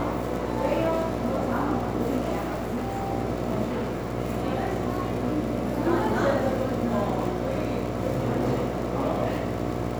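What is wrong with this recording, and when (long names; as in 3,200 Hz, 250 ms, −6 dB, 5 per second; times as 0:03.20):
mains buzz 60 Hz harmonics 12 −31 dBFS
surface crackle 72 per second −32 dBFS
0:02.40–0:03.11: clipping −24.5 dBFS
0:03.65–0:04.14: clipping −25 dBFS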